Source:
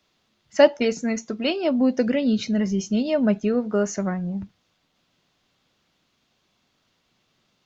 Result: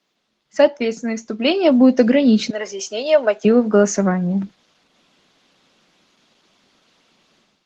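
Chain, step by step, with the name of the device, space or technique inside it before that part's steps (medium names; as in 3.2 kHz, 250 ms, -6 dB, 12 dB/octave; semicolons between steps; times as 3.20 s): 2.50–3.45 s: high-pass 470 Hz 24 dB/octave; video call (high-pass 170 Hz 24 dB/octave; level rider gain up to 12 dB; Opus 16 kbps 48 kHz)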